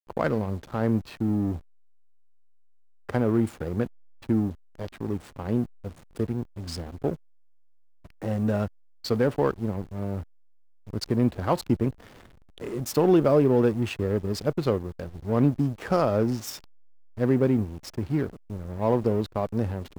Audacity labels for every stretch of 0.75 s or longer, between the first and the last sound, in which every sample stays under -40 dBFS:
1.600000	3.090000	silence
7.150000	8.050000	silence